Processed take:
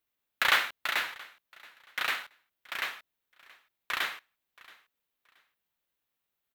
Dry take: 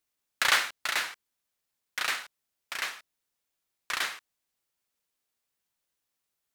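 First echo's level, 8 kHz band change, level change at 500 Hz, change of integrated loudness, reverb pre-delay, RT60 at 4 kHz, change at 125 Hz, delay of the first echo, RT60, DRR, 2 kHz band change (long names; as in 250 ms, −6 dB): −22.5 dB, −8.0 dB, 0.0 dB, −0.5 dB, no reverb audible, no reverb audible, can't be measured, 676 ms, no reverb audible, no reverb audible, 0.0 dB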